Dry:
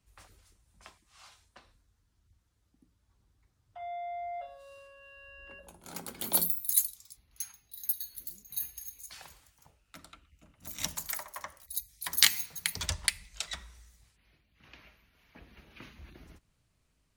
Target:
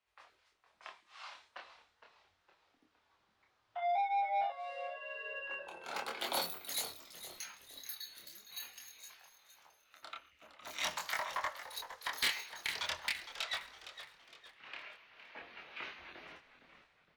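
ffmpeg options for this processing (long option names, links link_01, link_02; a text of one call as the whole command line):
ffmpeg -i in.wav -filter_complex "[0:a]highpass=frequency=180:poles=1,acrossover=split=470 4400:gain=0.1 1 0.0708[link_01][link_02][link_03];[link_01][link_02][link_03]amix=inputs=3:normalize=0,dynaudnorm=framelen=580:gausssize=3:maxgain=11dB,asettb=1/sr,asplit=3[link_04][link_05][link_06];[link_04]atrim=end=3.954[link_07];[link_05]atrim=start=3.95:end=4.5,asetpts=PTS-STARTPTS,afade=type=in:duration=0.004:curve=qsin,afade=type=out:start_time=0.546:duration=0.004:curve=qsin,afreqshift=100[link_08];[link_06]atrim=start=4.496[link_09];[link_07][link_08]acrossfade=duration=0.004:curve1=hsin:curve2=qsin[link_10];[link_10][link_09]acrossfade=duration=0.004:curve1=qsin:curve2=hsin,asettb=1/sr,asplit=3[link_11][link_12][link_13];[link_11]atrim=end=9.094[link_14];[link_12]atrim=start=9.09:end=10.03,asetpts=PTS-STARTPTS,afade=type=in:duration=0.004:curve=qsin,afade=type=out:start_time=0.936:duration=0.004:curve=qsin,acompressor=threshold=-59dB:ratio=6[link_15];[link_13]atrim=start=10.026[link_16];[link_14][link_15]acrossfade=duration=0.004:curve1=hsin:curve2=qsin[link_17];[link_17][link_16]acrossfade=duration=0.004:curve1=qsin:curve2=hsin,flanger=delay=22.5:depth=5.5:speed=0.44,asoftclip=type=tanh:threshold=-28.5dB,asplit=5[link_18][link_19][link_20][link_21][link_22];[link_19]adelay=462,afreqshift=-91,volume=-12dB[link_23];[link_20]adelay=924,afreqshift=-182,volume=-19.5dB[link_24];[link_21]adelay=1386,afreqshift=-273,volume=-27.1dB[link_25];[link_22]adelay=1848,afreqshift=-364,volume=-34.6dB[link_26];[link_18][link_23][link_24][link_25][link_26]amix=inputs=5:normalize=0,volume=1dB" out.wav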